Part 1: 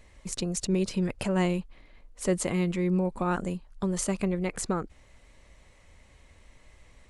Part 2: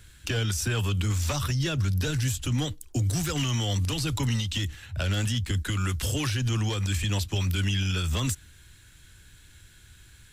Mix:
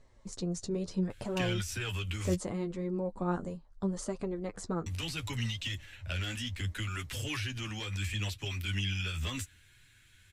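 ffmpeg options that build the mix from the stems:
-filter_complex "[0:a]lowpass=6.6k,equalizer=f=2.5k:w=1.5:g=-11,volume=-2dB[a];[1:a]equalizer=f=2.3k:t=o:w=1.1:g=9,adelay=1100,volume=-7dB,asplit=3[b][c][d];[b]atrim=end=2.35,asetpts=PTS-STARTPTS,afade=t=out:st=2.346:d=0.004:c=hsin[e];[c]atrim=start=2.35:end=4.86,asetpts=PTS-STARTPTS,volume=0[f];[d]atrim=start=4.86,asetpts=PTS-STARTPTS,afade=t=in:d=0.004:c=hsin[g];[e][f][g]concat=n=3:v=0:a=1[h];[a][h]amix=inputs=2:normalize=0,flanger=delay=7.1:depth=6.1:regen=23:speed=0.71:shape=triangular"

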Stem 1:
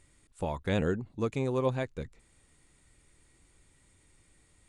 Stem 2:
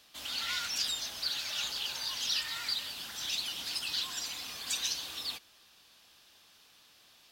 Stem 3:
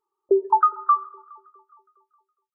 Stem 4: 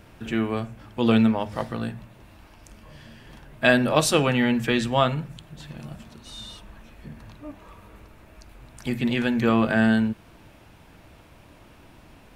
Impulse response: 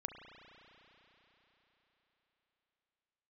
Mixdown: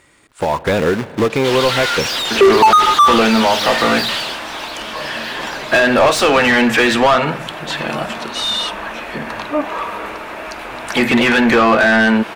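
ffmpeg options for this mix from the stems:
-filter_complex "[0:a]acompressor=threshold=-31dB:ratio=12,acrusher=bits=3:mode=log:mix=0:aa=0.000001,volume=-8.5dB,asplit=2[a][b];[b]volume=-12.5dB[c];[1:a]highshelf=f=6.6k:g=-9.5,aeval=exprs='(tanh(224*val(0)+0.65)-tanh(0.65))/224':c=same,adelay=1300,volume=-1dB,afade=t=out:st=4.16:d=0.25:silence=0.223872[d];[2:a]lowpass=f=1.5k:w=0.5412,lowpass=f=1.5k:w=1.3066,acrusher=bits=5:mix=0:aa=0.5,adelay=2100,volume=-4dB[e];[3:a]equalizer=f=100:t=o:w=2.2:g=-12,acompressor=threshold=-26dB:ratio=6,adelay=2100,volume=-7dB[f];[4:a]atrim=start_sample=2205[g];[c][g]afir=irnorm=-1:irlink=0[h];[a][d][e][f][h]amix=inputs=5:normalize=0,dynaudnorm=f=210:g=5:m=9dB,asplit=2[i][j];[j]highpass=f=720:p=1,volume=35dB,asoftclip=type=tanh:threshold=-1dB[k];[i][k]amix=inputs=2:normalize=0,lowpass=f=1.8k:p=1,volume=-6dB"

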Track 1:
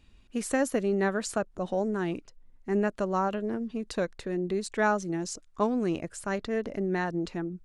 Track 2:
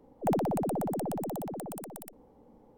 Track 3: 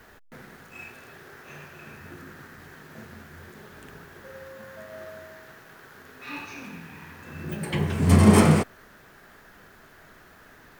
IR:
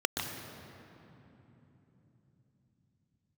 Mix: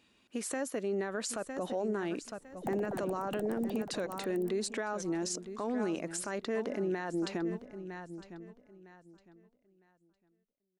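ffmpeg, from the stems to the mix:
-filter_complex "[0:a]volume=0dB,asplit=2[a][b];[b]volume=-20.5dB[c];[1:a]adelay=2400,volume=-13.5dB[d];[a]highpass=240,acompressor=threshold=-35dB:ratio=2,volume=0dB[e];[c]aecho=0:1:957|1914|2871|3828:1|0.24|0.0576|0.0138[f];[d][e][f]amix=inputs=3:normalize=0,dynaudnorm=f=140:g=17:m=6dB,alimiter=level_in=1.5dB:limit=-24dB:level=0:latency=1:release=37,volume=-1.5dB"

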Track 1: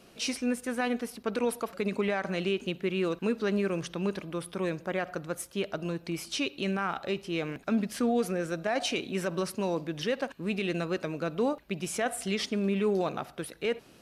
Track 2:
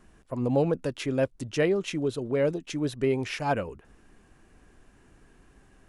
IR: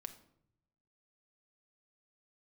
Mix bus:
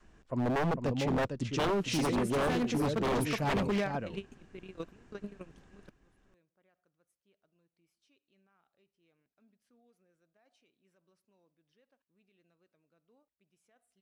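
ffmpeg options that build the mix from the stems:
-filter_complex "[0:a]adelay=1700,volume=-3.5dB[a];[1:a]lowpass=f=7.4k:w=0.5412,lowpass=f=7.4k:w=1.3066,volume=-3dB,asplit=3[b][c][d];[c]volume=-8.5dB[e];[d]apad=whole_len=693166[f];[a][f]sidechaingate=range=-38dB:threshold=-55dB:ratio=16:detection=peak[g];[e]aecho=0:1:453:1[h];[g][b][h]amix=inputs=3:normalize=0,adynamicequalizer=threshold=0.00631:dfrequency=170:dqfactor=0.9:tfrequency=170:tqfactor=0.9:attack=5:release=100:ratio=0.375:range=3:mode=boostabove:tftype=bell,aeval=exprs='0.0631*(abs(mod(val(0)/0.0631+3,4)-2)-1)':c=same"

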